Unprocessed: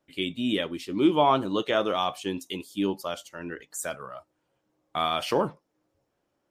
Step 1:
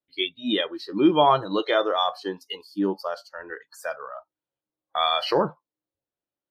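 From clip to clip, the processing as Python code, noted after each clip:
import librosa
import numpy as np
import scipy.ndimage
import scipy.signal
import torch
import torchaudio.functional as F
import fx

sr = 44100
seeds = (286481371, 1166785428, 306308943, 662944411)

y = fx.noise_reduce_blind(x, sr, reduce_db=22)
y = fx.high_shelf_res(y, sr, hz=5500.0, db=-10.5, q=3.0)
y = F.gain(torch.from_numpy(y), 3.0).numpy()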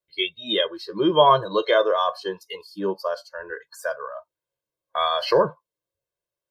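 y = x + 0.88 * np.pad(x, (int(1.9 * sr / 1000.0), 0))[:len(x)]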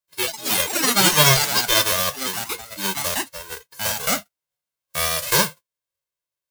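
y = fx.envelope_flatten(x, sr, power=0.1)
y = fx.echo_pitch(y, sr, ms=85, semitones=5, count=3, db_per_echo=-3.0)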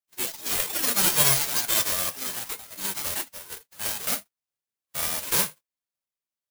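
y = (np.kron(x[::4], np.eye(4)[0]) * 4)[:len(x)]
y = F.gain(torch.from_numpy(y), -11.5).numpy()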